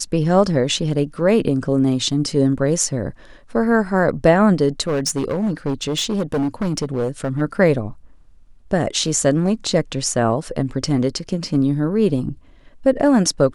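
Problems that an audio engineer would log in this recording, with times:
0:04.87–0:07.42: clipping −16.5 dBFS

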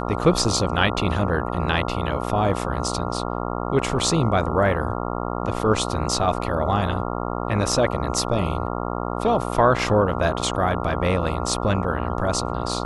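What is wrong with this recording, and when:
mains buzz 60 Hz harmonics 23 −27 dBFS

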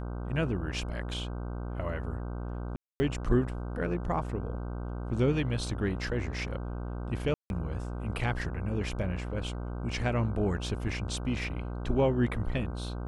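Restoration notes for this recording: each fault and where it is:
mains buzz 60 Hz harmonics 26 −36 dBFS
0:02.76–0:03.00: drop-out 240 ms
0:07.34–0:07.50: drop-out 161 ms

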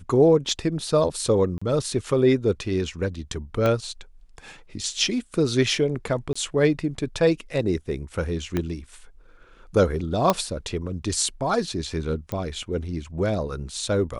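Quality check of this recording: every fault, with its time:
0:01.58–0:01.61: drop-out 35 ms
0:03.66: click −11 dBFS
0:06.33–0:06.36: drop-out 25 ms
0:08.57: click −12 dBFS
0:10.30: click −5 dBFS
0:12.32: click −16 dBFS

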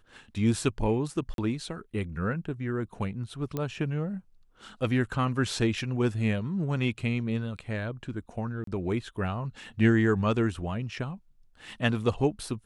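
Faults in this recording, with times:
0:01.34–0:01.38: drop-out 42 ms
0:03.57: click −18 dBFS
0:08.64–0:08.67: drop-out 33 ms

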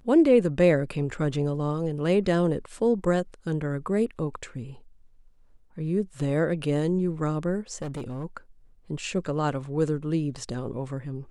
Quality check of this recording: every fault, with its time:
0:07.82–0:08.24: clipping −29.5 dBFS

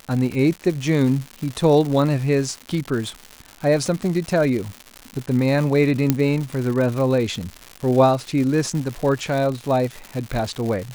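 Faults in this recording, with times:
surface crackle 230 per second −26 dBFS
0:06.10: click −3 dBFS

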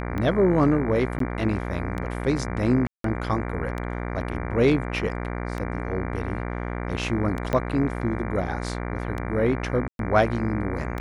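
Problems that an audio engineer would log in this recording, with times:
mains buzz 60 Hz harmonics 39 −30 dBFS
scratch tick 33 1/3 rpm −18 dBFS
0:01.19–0:01.20: drop-out 13 ms
0:02.87–0:03.04: drop-out 173 ms
0:07.53: click −12 dBFS
0:09.88–0:09.99: drop-out 112 ms

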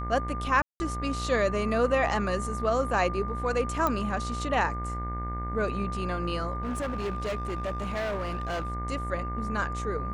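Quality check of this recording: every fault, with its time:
mains buzz 60 Hz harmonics 37 −34 dBFS
whistle 1,200 Hz −35 dBFS
0:00.62–0:00.80: drop-out 180 ms
0:03.87: click −13 dBFS
0:06.63–0:08.70: clipping −27.5 dBFS

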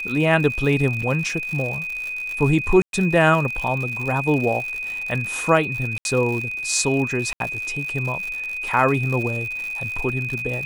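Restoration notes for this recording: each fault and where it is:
surface crackle 120 per second −27 dBFS
whistle 2,500 Hz −26 dBFS
0:01.02–0:01.03: drop-out 5.2 ms
0:02.82–0:02.93: drop-out 112 ms
0:05.98–0:06.05: drop-out 71 ms
0:07.33–0:07.40: drop-out 72 ms

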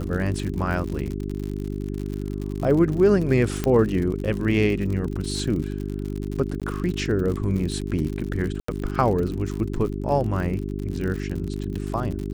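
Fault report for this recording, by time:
surface crackle 70 per second −29 dBFS
mains hum 50 Hz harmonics 8 −29 dBFS
0:03.64: click −10 dBFS
0:06.60–0:06.62: drop-out 17 ms
0:08.60–0:08.68: drop-out 84 ms

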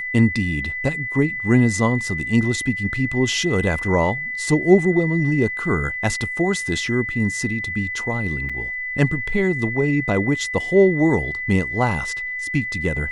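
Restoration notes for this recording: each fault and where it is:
whistle 2,000 Hz −25 dBFS
0:08.49–0:08.50: drop-out 5.6 ms

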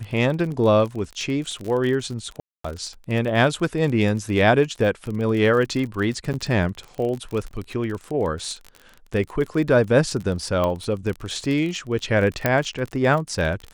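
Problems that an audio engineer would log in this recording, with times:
surface crackle 37 per second −28 dBFS
0:02.40–0:02.64: drop-out 244 ms
0:06.33–0:06.34: drop-out 9.7 ms
0:07.51: drop-out 2.2 ms
0:10.64: click −12 dBFS
0:12.46: click −5 dBFS

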